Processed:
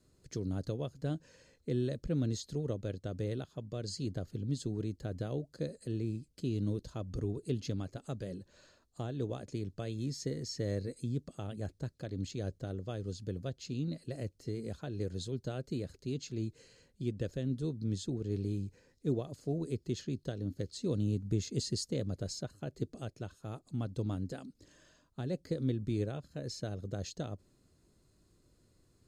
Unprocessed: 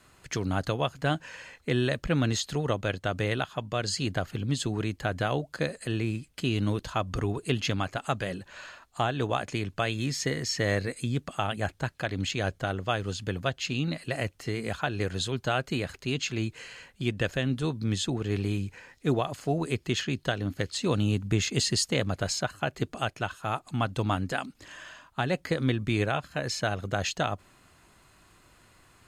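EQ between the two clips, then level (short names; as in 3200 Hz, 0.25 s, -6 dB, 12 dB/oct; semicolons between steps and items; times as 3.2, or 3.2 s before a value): band shelf 1500 Hz -15.5 dB 2.5 oct; high shelf 5600 Hz -9.5 dB; -6.0 dB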